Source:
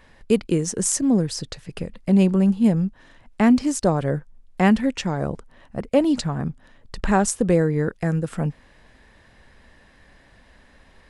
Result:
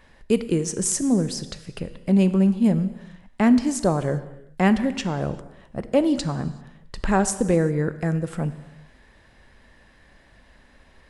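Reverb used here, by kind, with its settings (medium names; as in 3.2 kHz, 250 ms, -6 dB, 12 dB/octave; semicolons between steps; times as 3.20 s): gated-style reverb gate 420 ms falling, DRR 11.5 dB; trim -1.5 dB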